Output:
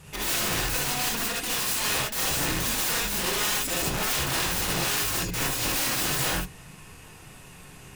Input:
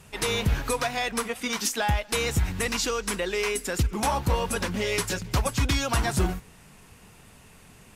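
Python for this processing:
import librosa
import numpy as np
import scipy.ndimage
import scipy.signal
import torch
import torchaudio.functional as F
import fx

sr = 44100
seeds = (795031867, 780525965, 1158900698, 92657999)

y = (np.mod(10.0 ** (26.5 / 20.0) * x + 1.0, 2.0) - 1.0) / 10.0 ** (26.5 / 20.0)
y = fx.rev_gated(y, sr, seeds[0], gate_ms=90, shape='rising', drr_db=-3.5)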